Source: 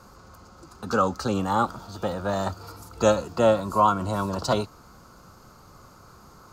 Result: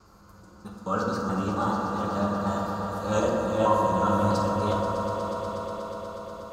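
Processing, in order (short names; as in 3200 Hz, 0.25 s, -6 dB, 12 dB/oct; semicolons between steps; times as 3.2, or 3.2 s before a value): local time reversal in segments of 0.215 s; swelling echo 0.121 s, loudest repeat 5, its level -12 dB; reverb RT60 2.5 s, pre-delay 5 ms, DRR -2.5 dB; gain -8.5 dB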